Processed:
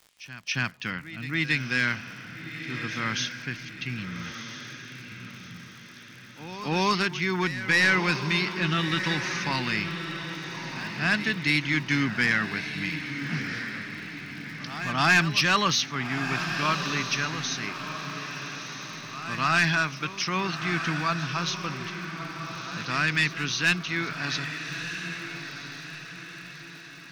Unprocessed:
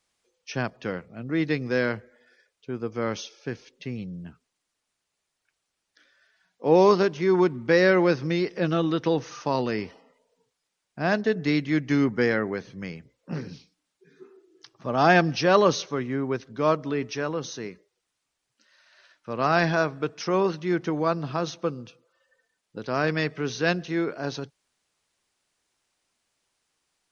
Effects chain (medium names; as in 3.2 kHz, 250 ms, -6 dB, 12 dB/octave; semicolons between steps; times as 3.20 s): FFT filter 160 Hz 0 dB, 270 Hz -4 dB, 490 Hz -17 dB, 1 kHz -1 dB, 2.5 kHz +11 dB, 5.9 kHz +6 dB; saturation -12.5 dBFS, distortion -15 dB; pre-echo 276 ms -14.5 dB; crackle 100 per s -40 dBFS; on a send: echo that smears into a reverb 1298 ms, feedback 45%, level -8 dB